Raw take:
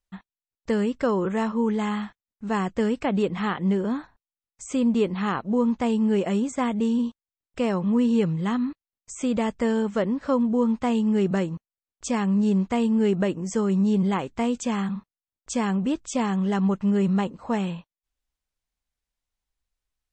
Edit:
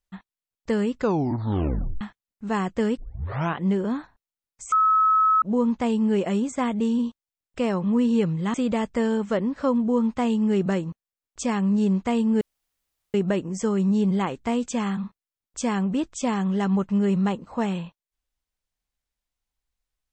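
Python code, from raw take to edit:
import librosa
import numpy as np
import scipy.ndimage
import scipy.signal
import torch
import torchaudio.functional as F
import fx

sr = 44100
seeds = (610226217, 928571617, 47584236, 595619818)

y = fx.edit(x, sr, fx.tape_stop(start_s=0.96, length_s=1.05),
    fx.tape_start(start_s=2.97, length_s=0.61),
    fx.bleep(start_s=4.72, length_s=0.7, hz=1290.0, db=-15.5),
    fx.cut(start_s=8.54, length_s=0.65),
    fx.insert_room_tone(at_s=13.06, length_s=0.73), tone=tone)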